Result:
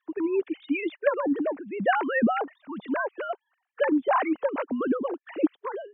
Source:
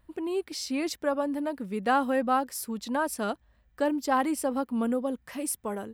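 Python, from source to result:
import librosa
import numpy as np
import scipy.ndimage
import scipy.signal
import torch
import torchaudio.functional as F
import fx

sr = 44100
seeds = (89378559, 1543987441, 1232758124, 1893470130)

y = fx.sine_speech(x, sr)
y = fx.hpss(y, sr, part='harmonic', gain_db=-10)
y = y * 10.0 ** (8.0 / 20.0)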